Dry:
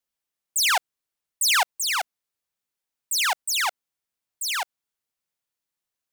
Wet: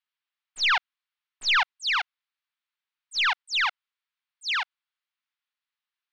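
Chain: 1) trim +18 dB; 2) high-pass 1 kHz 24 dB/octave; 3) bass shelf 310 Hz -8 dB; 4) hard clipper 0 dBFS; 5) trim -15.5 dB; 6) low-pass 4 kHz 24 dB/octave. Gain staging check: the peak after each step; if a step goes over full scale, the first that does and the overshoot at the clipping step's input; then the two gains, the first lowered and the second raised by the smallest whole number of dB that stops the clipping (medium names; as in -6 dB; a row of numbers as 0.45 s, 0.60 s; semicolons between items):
+4.0 dBFS, +8.5 dBFS, +8.5 dBFS, 0.0 dBFS, -15.5 dBFS, -14.0 dBFS; step 1, 8.5 dB; step 1 +9 dB, step 5 -6.5 dB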